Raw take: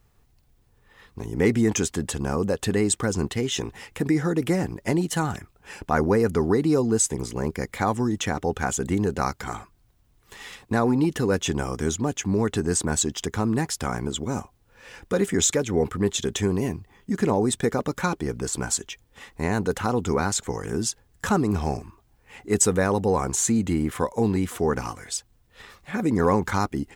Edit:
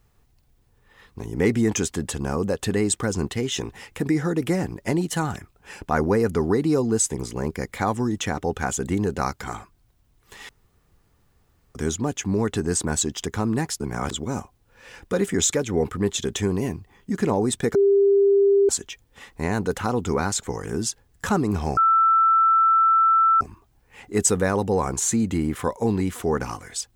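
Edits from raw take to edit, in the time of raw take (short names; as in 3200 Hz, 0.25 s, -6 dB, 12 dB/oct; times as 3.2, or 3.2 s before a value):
10.49–11.75 room tone
13.8–14.11 reverse
17.75–18.69 bleep 398 Hz -13.5 dBFS
21.77 add tone 1330 Hz -14 dBFS 1.64 s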